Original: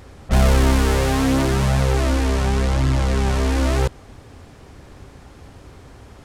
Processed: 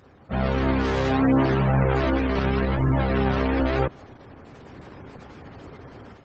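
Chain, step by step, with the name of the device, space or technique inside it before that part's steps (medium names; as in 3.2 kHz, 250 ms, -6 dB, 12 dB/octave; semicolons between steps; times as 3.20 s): 2.16–2.70 s: dynamic bell 800 Hz, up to -4 dB, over -38 dBFS, Q 2.4; noise-suppressed video call (high-pass 110 Hz 12 dB/octave; spectral gate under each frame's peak -25 dB strong; level rider gain up to 10.5 dB; trim -6.5 dB; Opus 12 kbps 48 kHz)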